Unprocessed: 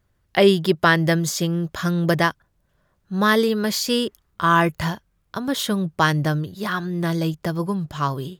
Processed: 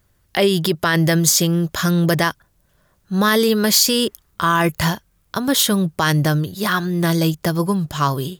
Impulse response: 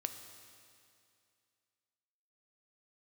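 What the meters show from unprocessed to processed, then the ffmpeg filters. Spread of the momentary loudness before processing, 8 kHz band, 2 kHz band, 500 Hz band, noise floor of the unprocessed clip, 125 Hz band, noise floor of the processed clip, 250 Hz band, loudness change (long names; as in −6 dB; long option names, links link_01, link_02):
9 LU, +11.5 dB, +1.0 dB, +1.0 dB, −68 dBFS, +4.0 dB, −62 dBFS, +3.5 dB, +3.5 dB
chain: -af "alimiter=limit=-13dB:level=0:latency=1:release=39,highshelf=frequency=5000:gain=10,volume=5dB"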